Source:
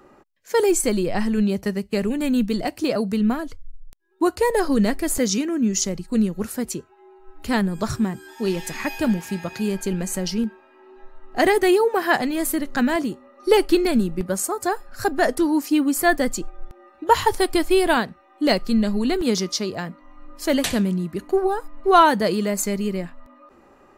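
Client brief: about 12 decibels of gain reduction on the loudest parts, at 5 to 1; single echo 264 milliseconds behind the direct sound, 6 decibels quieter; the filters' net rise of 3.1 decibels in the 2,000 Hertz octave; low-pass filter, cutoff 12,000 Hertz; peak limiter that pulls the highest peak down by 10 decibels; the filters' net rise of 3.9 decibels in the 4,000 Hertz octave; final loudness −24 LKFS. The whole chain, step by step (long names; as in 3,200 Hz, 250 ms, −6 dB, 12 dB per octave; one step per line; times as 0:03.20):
low-pass filter 12,000 Hz
parametric band 2,000 Hz +3 dB
parametric band 4,000 Hz +4 dB
downward compressor 5 to 1, threshold −22 dBFS
brickwall limiter −18.5 dBFS
single-tap delay 264 ms −6 dB
level +4 dB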